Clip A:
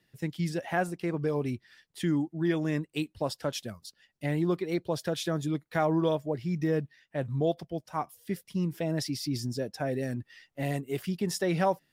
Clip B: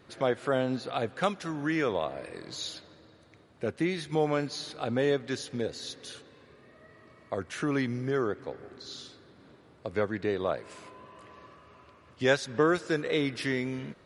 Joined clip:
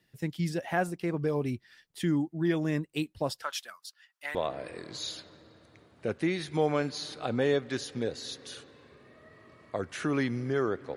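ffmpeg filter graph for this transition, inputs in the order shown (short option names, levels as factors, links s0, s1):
-filter_complex "[0:a]asettb=1/sr,asplit=3[s0][s1][s2];[s0]atrim=end=3.424[s3];[s1]atrim=start=3.42:end=4.35,asetpts=PTS-STARTPTS,afade=t=in:d=0.004:c=qsin,afade=t=out:st=0.926:d=0.004:c=qsin,highpass=f=1200:t=q:w=2.2[s4];[s2]atrim=start=4.346[s5];[s3][s4]acrossfade=d=0.004:c1=hsin:c2=qsin[s6];[s6][s5]acrossfade=d=0.004:c1=qsin:c2=hsin,apad=whole_dur=10.96,atrim=end=10.96,atrim=end=4.352[s7];[1:a]atrim=start=1.928:end=8.54[s8];[s7][s8]acrossfade=d=0.004:c1=hsin:c2=hsin"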